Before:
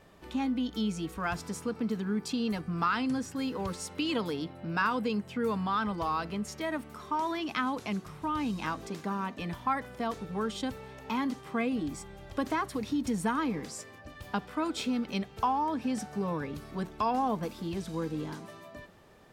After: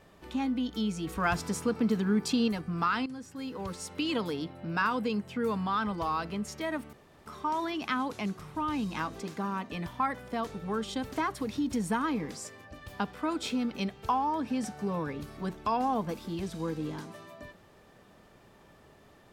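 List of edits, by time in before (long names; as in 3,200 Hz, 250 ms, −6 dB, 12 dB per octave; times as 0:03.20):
0:01.07–0:02.48: clip gain +4.5 dB
0:03.06–0:04.00: fade in, from −12.5 dB
0:06.93: splice in room tone 0.33 s
0:10.79–0:12.46: remove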